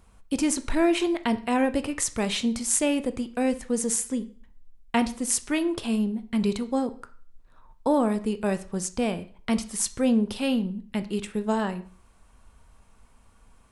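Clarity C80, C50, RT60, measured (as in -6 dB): 20.0 dB, 16.5 dB, 0.45 s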